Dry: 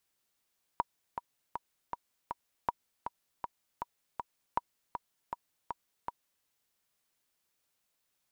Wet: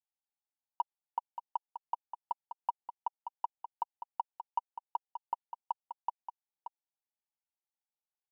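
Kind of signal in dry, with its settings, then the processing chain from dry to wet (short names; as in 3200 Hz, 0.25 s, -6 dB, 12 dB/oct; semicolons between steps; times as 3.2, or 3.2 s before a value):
metronome 159 bpm, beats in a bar 5, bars 3, 958 Hz, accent 7.5 dB -15 dBFS
sample leveller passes 5; band-pass 820 Hz, Q 7.4; on a send: echo 0.579 s -9.5 dB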